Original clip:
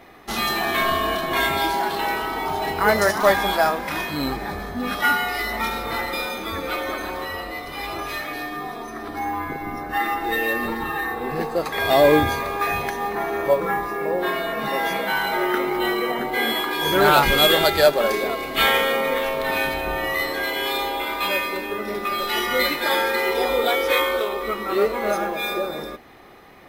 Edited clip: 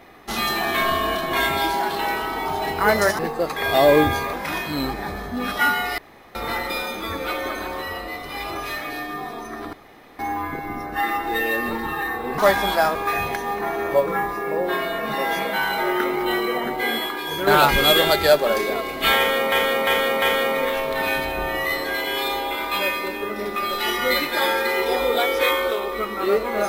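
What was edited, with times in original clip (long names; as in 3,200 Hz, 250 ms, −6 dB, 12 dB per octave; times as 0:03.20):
0:03.19–0:03.76: swap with 0:11.35–0:12.49
0:05.41–0:05.78: fill with room tone
0:09.16: splice in room tone 0.46 s
0:16.27–0:17.01: fade out, to −7.5 dB
0:18.71–0:19.06: repeat, 4 plays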